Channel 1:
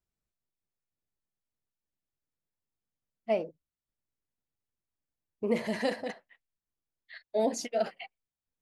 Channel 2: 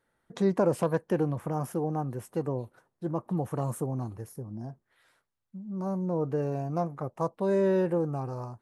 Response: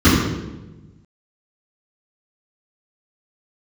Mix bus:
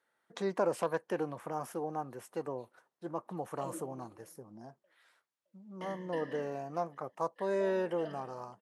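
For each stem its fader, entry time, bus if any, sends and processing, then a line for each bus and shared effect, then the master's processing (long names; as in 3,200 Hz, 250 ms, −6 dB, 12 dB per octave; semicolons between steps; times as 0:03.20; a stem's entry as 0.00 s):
−16.5 dB, 0.25 s, send −22.5 dB, echo send −18.5 dB, EQ curve with evenly spaced ripples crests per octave 1.2, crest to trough 17 dB; gate pattern ".xx..x..xxx." 143 BPM −60 dB
−2.0 dB, 0.00 s, no send, no echo send, no processing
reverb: on, RT60 1.1 s, pre-delay 3 ms
echo: repeating echo 616 ms, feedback 34%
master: meter weighting curve A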